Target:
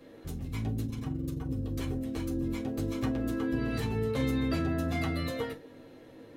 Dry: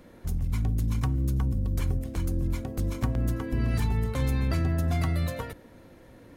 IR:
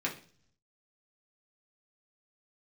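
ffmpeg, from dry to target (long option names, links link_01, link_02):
-filter_complex "[0:a]asettb=1/sr,asplit=3[link_01][link_02][link_03];[link_01]atrim=end=0.854[link_04];[link_02]atrim=start=0.85:end=1.49,asetpts=PTS-STARTPTS,afade=type=in:duration=0.004:curve=qsin,afade=type=out:start_time=0.636:duration=0.004:curve=qsin,tremolo=f=23:d=0.947[link_05];[link_03]atrim=start=1.486[link_06];[link_04][link_05]acrossfade=duration=0.004:curve1=hsin:curve2=qsin[link_07];[link_07][link_06]acrossfade=duration=0.004:curve1=qsin:curve2=hsin[link_08];[1:a]atrim=start_sample=2205,afade=type=out:start_time=0.16:duration=0.01,atrim=end_sample=7497,asetrate=70560,aresample=44100[link_09];[link_08][link_09]afir=irnorm=-1:irlink=0,volume=-1dB"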